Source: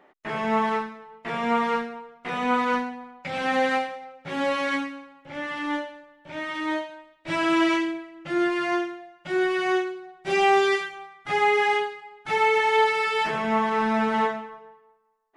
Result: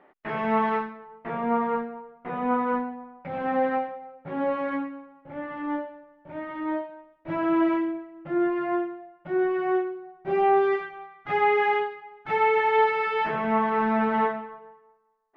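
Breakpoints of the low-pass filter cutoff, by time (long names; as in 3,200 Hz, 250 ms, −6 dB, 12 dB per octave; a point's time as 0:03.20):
0:00.80 2,400 Hz
0:01.46 1,100 Hz
0:10.55 1,100 Hz
0:11.17 2,000 Hz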